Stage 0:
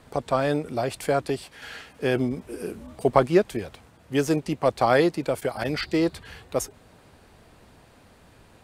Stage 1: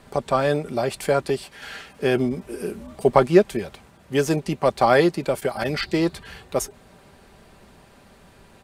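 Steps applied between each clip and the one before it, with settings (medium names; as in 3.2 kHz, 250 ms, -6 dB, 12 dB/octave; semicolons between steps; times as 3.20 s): comb 5.1 ms, depth 37%; trim +2.5 dB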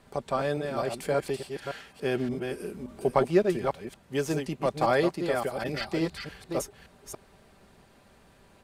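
chunks repeated in reverse 286 ms, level -5 dB; trim -8 dB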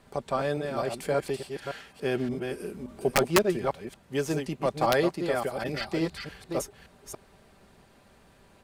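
integer overflow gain 12.5 dB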